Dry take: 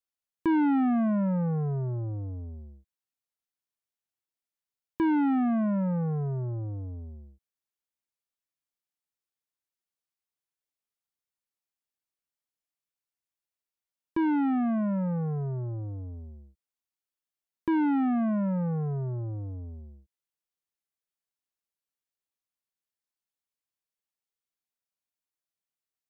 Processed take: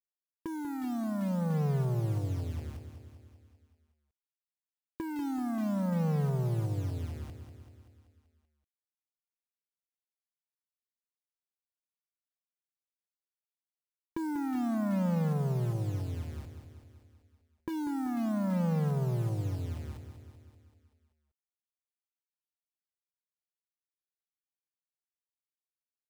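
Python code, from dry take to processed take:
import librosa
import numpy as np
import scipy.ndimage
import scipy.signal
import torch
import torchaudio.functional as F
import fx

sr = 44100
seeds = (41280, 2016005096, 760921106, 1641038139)

p1 = scipy.signal.sosfilt(scipy.signal.butter(2, 2100.0, 'lowpass', fs=sr, output='sos'), x)
p2 = fx.over_compress(p1, sr, threshold_db=-28.0, ratio=-0.5)
p3 = 10.0 ** (-27.0 / 20.0) * np.tanh(p2 / 10.0 ** (-27.0 / 20.0))
p4 = fx.quant_dither(p3, sr, seeds[0], bits=8, dither='none')
y = p4 + fx.echo_feedback(p4, sr, ms=192, feedback_pct=60, wet_db=-9.5, dry=0)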